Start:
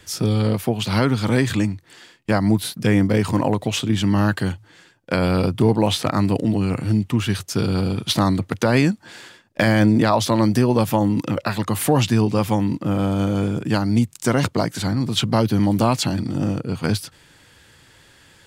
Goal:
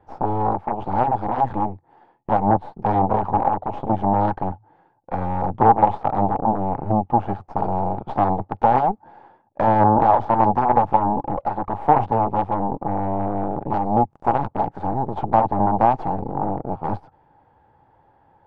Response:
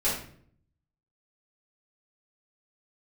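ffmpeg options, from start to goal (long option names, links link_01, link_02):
-af "aeval=exprs='0.562*(cos(1*acos(clip(val(0)/0.562,-1,1)))-cos(1*PI/2))+0.158*(cos(3*acos(clip(val(0)/0.562,-1,1)))-cos(3*PI/2))+0.0708*(cos(5*acos(clip(val(0)/0.562,-1,1)))-cos(5*PI/2))+0.251*(cos(6*acos(clip(val(0)/0.562,-1,1)))-cos(6*PI/2))+0.251*(cos(8*acos(clip(val(0)/0.562,-1,1)))-cos(8*PI/2))':channel_layout=same,lowpass=frequency=830:width_type=q:width=8.8,volume=-5dB"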